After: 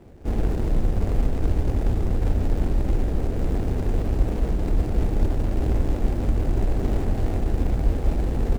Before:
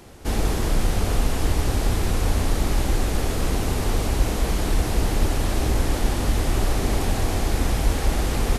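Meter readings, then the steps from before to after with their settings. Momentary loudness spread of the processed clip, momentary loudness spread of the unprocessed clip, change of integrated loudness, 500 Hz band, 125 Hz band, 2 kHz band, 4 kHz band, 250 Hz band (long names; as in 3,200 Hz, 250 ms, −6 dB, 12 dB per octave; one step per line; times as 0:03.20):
1 LU, 1 LU, −1.5 dB, −2.5 dB, 0.0 dB, −11.0 dB, −15.5 dB, −0.5 dB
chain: running median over 41 samples
parametric band 7,600 Hz +2.5 dB 0.36 octaves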